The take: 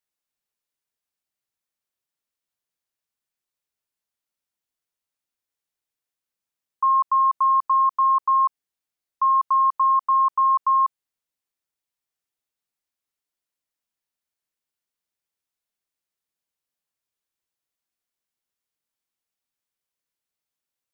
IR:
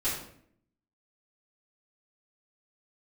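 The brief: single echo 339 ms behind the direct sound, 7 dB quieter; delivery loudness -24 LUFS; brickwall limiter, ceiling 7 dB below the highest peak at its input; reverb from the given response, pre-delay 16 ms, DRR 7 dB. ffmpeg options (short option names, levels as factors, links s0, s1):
-filter_complex "[0:a]alimiter=limit=0.0841:level=0:latency=1,aecho=1:1:339:0.447,asplit=2[s0][s1];[1:a]atrim=start_sample=2205,adelay=16[s2];[s1][s2]afir=irnorm=-1:irlink=0,volume=0.188[s3];[s0][s3]amix=inputs=2:normalize=0,volume=1.26"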